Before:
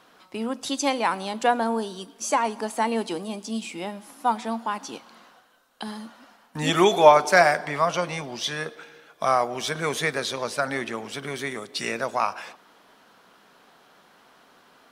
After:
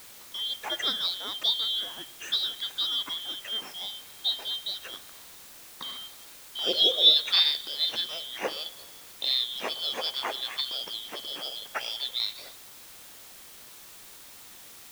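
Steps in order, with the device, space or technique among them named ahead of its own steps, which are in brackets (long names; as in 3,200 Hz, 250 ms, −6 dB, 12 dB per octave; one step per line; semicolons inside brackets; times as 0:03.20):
split-band scrambled radio (band-splitting scrambler in four parts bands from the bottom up 3412; band-pass filter 320–2,900 Hz; white noise bed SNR 17 dB)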